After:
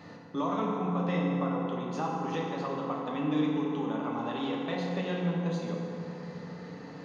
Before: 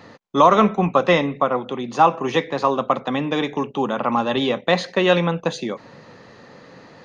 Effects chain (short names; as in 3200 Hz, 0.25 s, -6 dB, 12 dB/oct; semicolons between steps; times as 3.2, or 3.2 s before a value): bell 180 Hz +13.5 dB 0.29 oct; compressor 2:1, threshold -37 dBFS, peak gain reduction 16.5 dB; FDN reverb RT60 3.4 s, high-frequency decay 0.5×, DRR -3.5 dB; gain -7.5 dB